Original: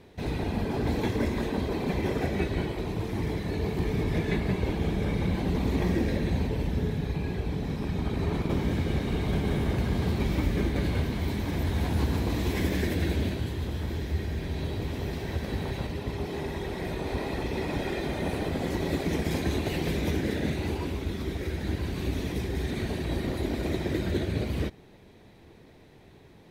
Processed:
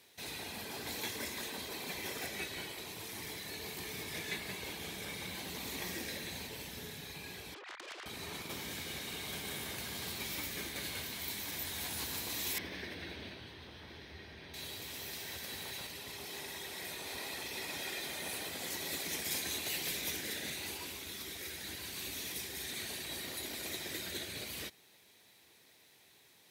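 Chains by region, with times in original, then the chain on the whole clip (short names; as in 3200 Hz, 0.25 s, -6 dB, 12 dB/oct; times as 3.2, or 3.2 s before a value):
7.54–8.06 sine-wave speech + tube stage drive 35 dB, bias 0.75
12.58–14.54 polynomial smoothing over 15 samples + high shelf 2800 Hz -11 dB
whole clip: HPF 77 Hz; pre-emphasis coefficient 0.97; gain +7 dB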